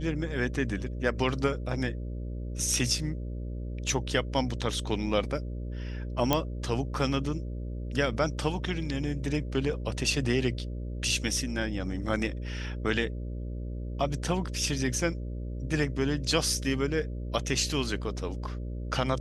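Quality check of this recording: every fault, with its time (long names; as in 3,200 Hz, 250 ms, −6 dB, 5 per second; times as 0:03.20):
mains buzz 60 Hz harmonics 10 −35 dBFS
0:06.33: click −8 dBFS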